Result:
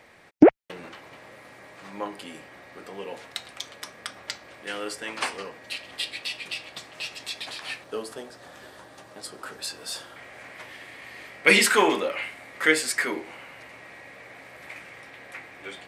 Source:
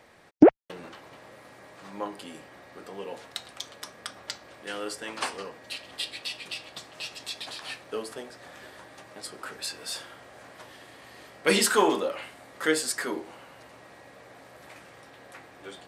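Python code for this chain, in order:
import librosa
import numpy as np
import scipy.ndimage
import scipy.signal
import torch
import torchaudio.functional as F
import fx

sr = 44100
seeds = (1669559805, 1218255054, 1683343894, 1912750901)

y = fx.peak_eq(x, sr, hz=2200.0, db=fx.steps((0.0, 5.5), (7.84, -2.5), (10.16, 12.0)), octaves=0.65)
y = y * 10.0 ** (1.0 / 20.0)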